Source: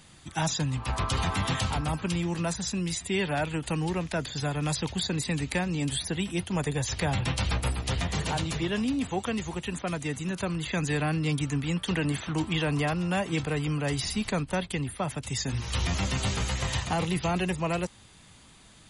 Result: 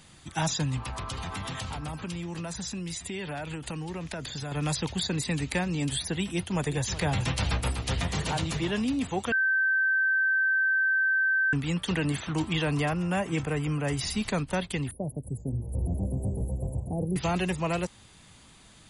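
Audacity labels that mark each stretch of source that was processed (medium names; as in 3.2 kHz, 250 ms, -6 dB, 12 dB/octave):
0.840000	4.520000	compression 10:1, threshold -31 dBFS
6.240000	8.710000	delay 375 ms -14 dB
9.320000	11.530000	bleep 1.55 kHz -21.5 dBFS
12.880000	14.010000	peaking EQ 4.1 kHz -11 dB 0.59 oct
14.910000	17.160000	inverse Chebyshev band-stop 1.3–6 kHz, stop band 50 dB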